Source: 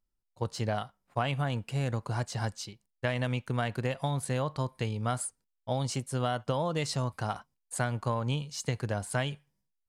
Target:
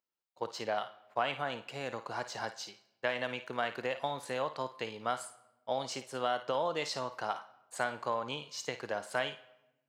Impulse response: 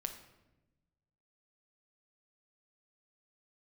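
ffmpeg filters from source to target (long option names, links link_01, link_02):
-filter_complex "[0:a]highpass=410,equalizer=frequency=9800:width=1.4:gain=-14,asplit=2[link_01][link_02];[1:a]atrim=start_sample=2205,lowshelf=frequency=480:gain=-11,adelay=54[link_03];[link_02][link_03]afir=irnorm=-1:irlink=0,volume=-8dB[link_04];[link_01][link_04]amix=inputs=2:normalize=0"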